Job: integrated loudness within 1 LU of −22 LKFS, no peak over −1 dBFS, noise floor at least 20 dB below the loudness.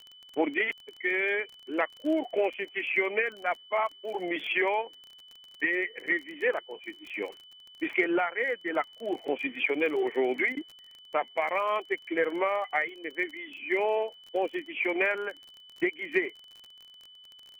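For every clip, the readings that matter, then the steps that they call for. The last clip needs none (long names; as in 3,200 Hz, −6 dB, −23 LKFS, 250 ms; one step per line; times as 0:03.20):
crackle rate 29 per second; interfering tone 3,000 Hz; level of the tone −50 dBFS; integrated loudness −29.5 LKFS; sample peak −12.5 dBFS; target loudness −22.0 LKFS
→ click removal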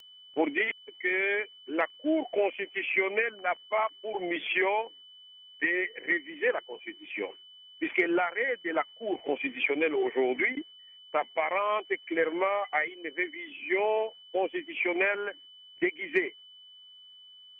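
crackle rate 0.057 per second; interfering tone 3,000 Hz; level of the tone −50 dBFS
→ notch filter 3,000 Hz, Q 30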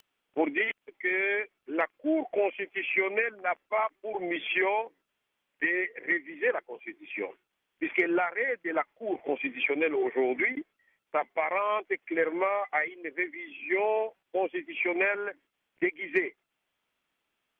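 interfering tone none found; integrated loudness −30.0 LKFS; sample peak −12.5 dBFS; target loudness −22.0 LKFS
→ level +8 dB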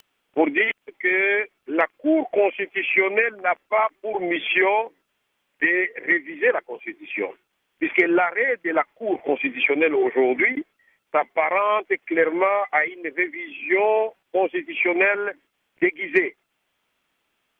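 integrated loudness −22.0 LKFS; sample peak −4.5 dBFS; background noise floor −74 dBFS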